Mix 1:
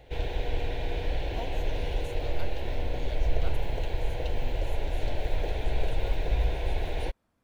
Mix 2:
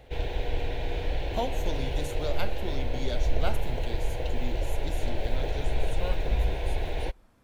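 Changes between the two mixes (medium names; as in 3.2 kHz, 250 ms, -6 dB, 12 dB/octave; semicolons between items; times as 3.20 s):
speech +7.0 dB; reverb: on, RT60 0.70 s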